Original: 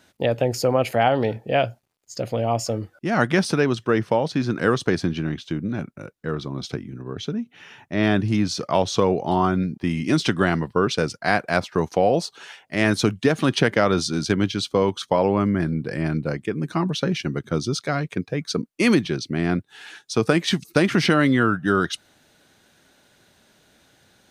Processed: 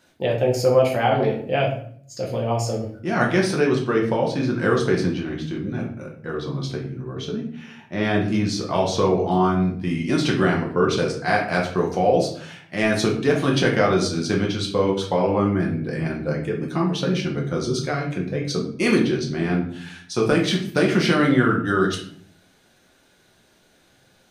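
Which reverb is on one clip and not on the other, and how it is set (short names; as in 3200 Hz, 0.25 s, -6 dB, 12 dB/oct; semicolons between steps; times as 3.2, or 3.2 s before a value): shoebox room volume 78 m³, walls mixed, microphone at 0.88 m; gain -4 dB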